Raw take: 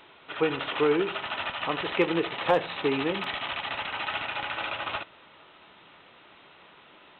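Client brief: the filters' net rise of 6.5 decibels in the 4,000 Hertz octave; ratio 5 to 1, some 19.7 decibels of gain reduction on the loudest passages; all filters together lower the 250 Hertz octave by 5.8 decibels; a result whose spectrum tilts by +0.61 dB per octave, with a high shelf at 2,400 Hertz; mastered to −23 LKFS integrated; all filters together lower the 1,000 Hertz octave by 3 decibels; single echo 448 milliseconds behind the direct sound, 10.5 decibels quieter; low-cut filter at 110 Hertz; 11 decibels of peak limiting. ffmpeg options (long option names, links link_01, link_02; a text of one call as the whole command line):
ffmpeg -i in.wav -af "highpass=110,equalizer=frequency=250:width_type=o:gain=-8.5,equalizer=frequency=1000:width_type=o:gain=-4.5,highshelf=frequency=2400:gain=3,equalizer=frequency=4000:width_type=o:gain=7,acompressor=threshold=-43dB:ratio=5,alimiter=level_in=16.5dB:limit=-24dB:level=0:latency=1,volume=-16.5dB,aecho=1:1:448:0.299,volume=25dB" out.wav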